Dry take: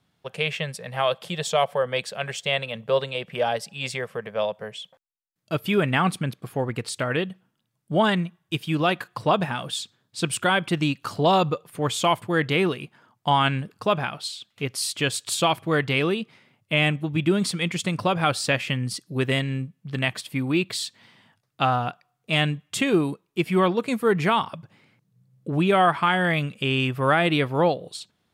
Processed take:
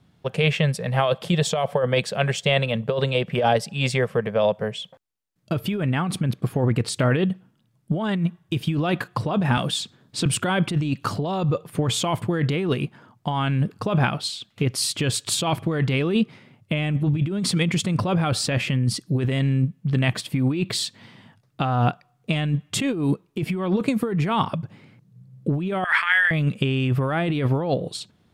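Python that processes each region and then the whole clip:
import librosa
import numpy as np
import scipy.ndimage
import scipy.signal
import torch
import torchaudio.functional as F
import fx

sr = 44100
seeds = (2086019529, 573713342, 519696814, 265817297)

y = fx.chain(x, sr, fx.peak_eq(hz=110.0, db=-8.0, octaves=0.35),
    fx.band_squash(depth_pct=40), at=(9.57, 10.26))
y = fx.chain(y, sr, fx.over_compress(threshold_db=-27.0, ratio=-1.0),
    fx.highpass_res(hz=1800.0, q=4.5), at=(25.84, 26.31))
y = fx.low_shelf(y, sr, hz=440.0, db=10.0)
y = fx.over_compress(y, sr, threshold_db=-21.0, ratio=-1.0)
y = fx.high_shelf(y, sr, hz=11000.0, db=-4.5)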